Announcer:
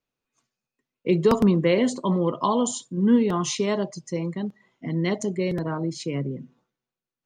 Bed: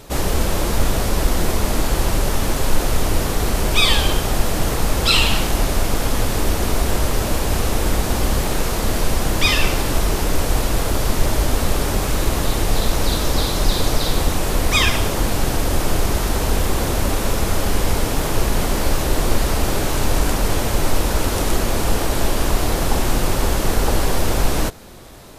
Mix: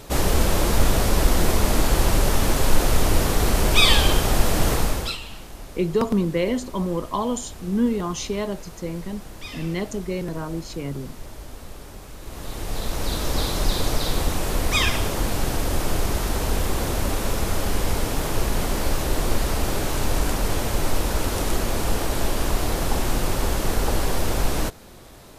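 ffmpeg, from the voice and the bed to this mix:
ffmpeg -i stem1.wav -i stem2.wav -filter_complex "[0:a]adelay=4700,volume=-2.5dB[link_01];[1:a]volume=15.5dB,afade=type=out:start_time=4.73:duration=0.44:silence=0.1,afade=type=in:start_time=12.21:duration=1.22:silence=0.158489[link_02];[link_01][link_02]amix=inputs=2:normalize=0" out.wav

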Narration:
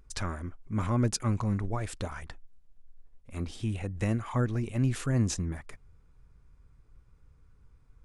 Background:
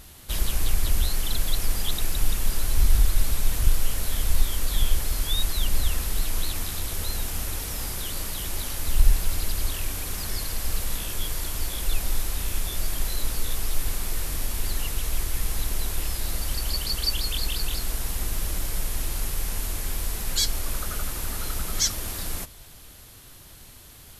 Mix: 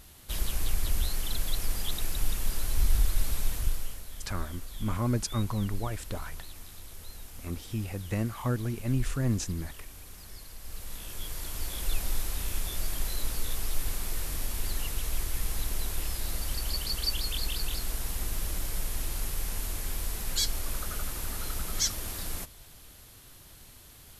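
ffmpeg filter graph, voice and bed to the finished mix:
ffmpeg -i stem1.wav -i stem2.wav -filter_complex "[0:a]adelay=4100,volume=-1.5dB[link_01];[1:a]volume=6.5dB,afade=type=out:start_time=3.42:duration=0.62:silence=0.281838,afade=type=in:start_time=10.6:duration=1.29:silence=0.251189[link_02];[link_01][link_02]amix=inputs=2:normalize=0" out.wav

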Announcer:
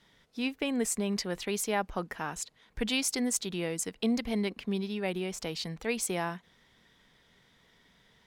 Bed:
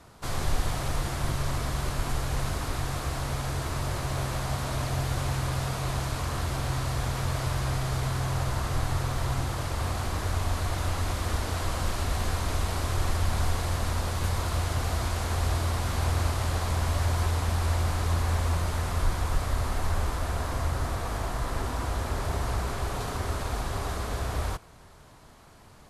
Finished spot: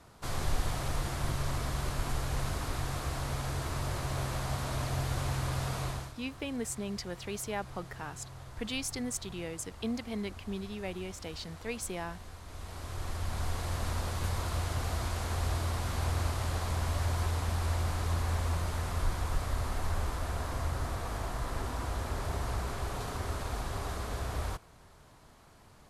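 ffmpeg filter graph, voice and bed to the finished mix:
ffmpeg -i stem1.wav -i stem2.wav -filter_complex "[0:a]adelay=5800,volume=-6dB[link_01];[1:a]volume=10dB,afade=type=out:start_time=5.82:duration=0.32:silence=0.177828,afade=type=in:start_time=12.45:duration=1.42:silence=0.199526[link_02];[link_01][link_02]amix=inputs=2:normalize=0" out.wav

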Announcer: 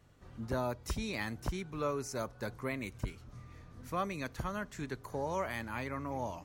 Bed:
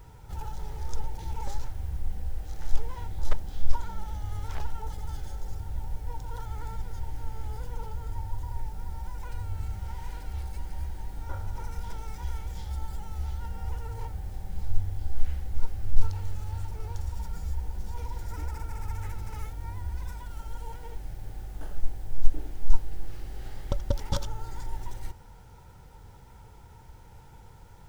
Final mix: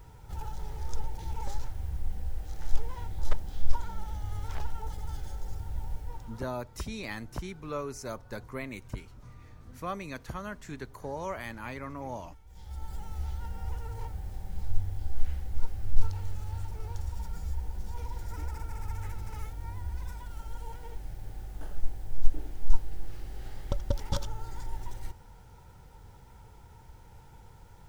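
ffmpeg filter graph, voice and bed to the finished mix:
ffmpeg -i stem1.wav -i stem2.wav -filter_complex "[0:a]adelay=5900,volume=-0.5dB[link_01];[1:a]volume=16.5dB,afade=type=out:start_time=5.91:duration=0.61:silence=0.11885,afade=type=in:start_time=12.46:duration=0.54:silence=0.125893[link_02];[link_01][link_02]amix=inputs=2:normalize=0" out.wav

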